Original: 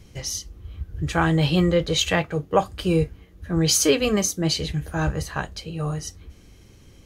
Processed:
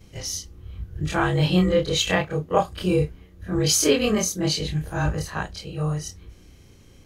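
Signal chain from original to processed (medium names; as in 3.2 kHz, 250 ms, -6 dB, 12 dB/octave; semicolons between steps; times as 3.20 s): short-time spectra conjugated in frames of 66 ms; trim +2.5 dB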